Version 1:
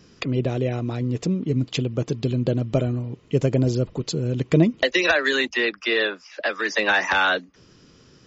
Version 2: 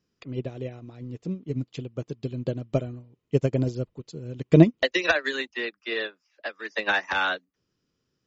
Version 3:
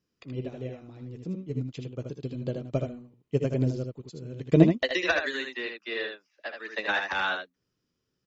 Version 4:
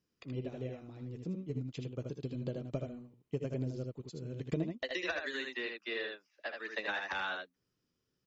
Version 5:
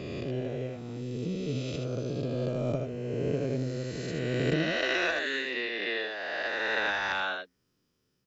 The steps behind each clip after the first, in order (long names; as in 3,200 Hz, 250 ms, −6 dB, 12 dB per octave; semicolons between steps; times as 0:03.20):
expander for the loud parts 2.5 to 1, over −32 dBFS; level +4 dB
ambience of single reflections 16 ms −17.5 dB, 62 ms −16.5 dB, 78 ms −5.5 dB; level −4 dB
downward compressor 4 to 1, threshold −31 dBFS, peak gain reduction 17 dB; level −3 dB
peak hold with a rise ahead of every peak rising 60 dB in 2.80 s; level +3 dB